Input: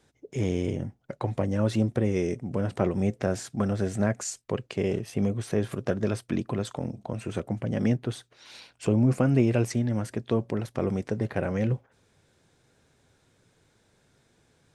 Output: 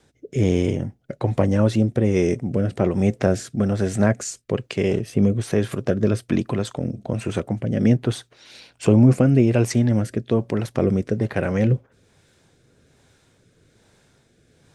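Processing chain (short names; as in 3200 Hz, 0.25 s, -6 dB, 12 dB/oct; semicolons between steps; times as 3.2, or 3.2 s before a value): rotary speaker horn 1.2 Hz; gain +8.5 dB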